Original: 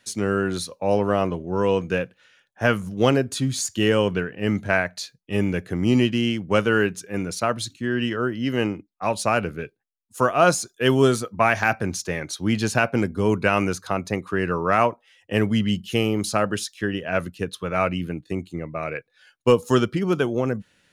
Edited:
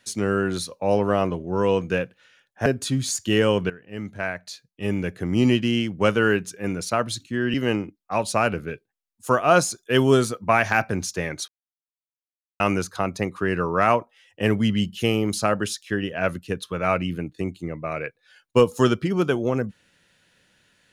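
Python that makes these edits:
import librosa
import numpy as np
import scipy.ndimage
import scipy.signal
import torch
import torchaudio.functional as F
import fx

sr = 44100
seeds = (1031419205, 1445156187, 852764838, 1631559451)

y = fx.edit(x, sr, fx.cut(start_s=2.66, length_s=0.5),
    fx.fade_in_from(start_s=4.2, length_s=1.8, floor_db=-15.0),
    fx.cut(start_s=8.04, length_s=0.41),
    fx.silence(start_s=12.39, length_s=1.12), tone=tone)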